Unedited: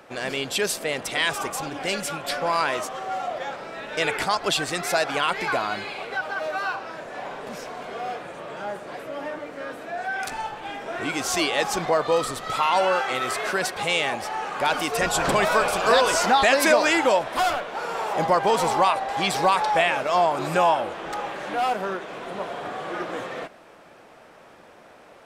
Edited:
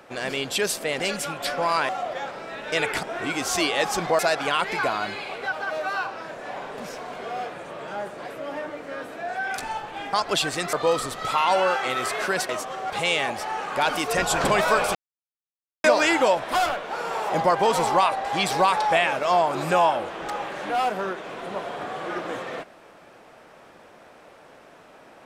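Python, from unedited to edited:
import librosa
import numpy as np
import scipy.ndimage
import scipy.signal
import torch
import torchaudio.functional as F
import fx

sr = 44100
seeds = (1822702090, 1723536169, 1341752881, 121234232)

y = fx.edit(x, sr, fx.cut(start_s=1.0, length_s=0.84),
    fx.move(start_s=2.73, length_s=0.41, to_s=13.74),
    fx.swap(start_s=4.28, length_s=0.6, other_s=10.82, other_length_s=1.16),
    fx.silence(start_s=15.79, length_s=0.89), tone=tone)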